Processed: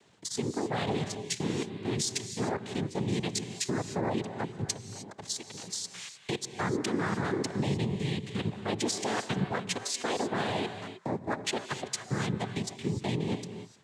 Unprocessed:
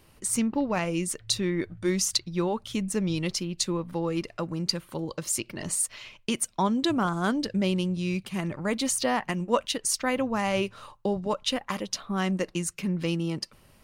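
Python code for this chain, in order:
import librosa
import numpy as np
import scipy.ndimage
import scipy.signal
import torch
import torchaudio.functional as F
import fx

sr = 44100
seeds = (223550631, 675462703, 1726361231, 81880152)

y = fx.level_steps(x, sr, step_db=15)
y = fx.noise_vocoder(y, sr, seeds[0], bands=6)
y = fx.rev_gated(y, sr, seeds[1], gate_ms=330, shape='rising', drr_db=9.0)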